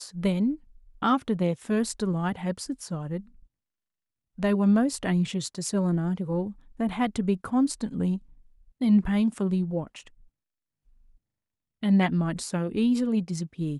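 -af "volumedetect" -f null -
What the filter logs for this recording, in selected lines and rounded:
mean_volume: -27.2 dB
max_volume: -9.7 dB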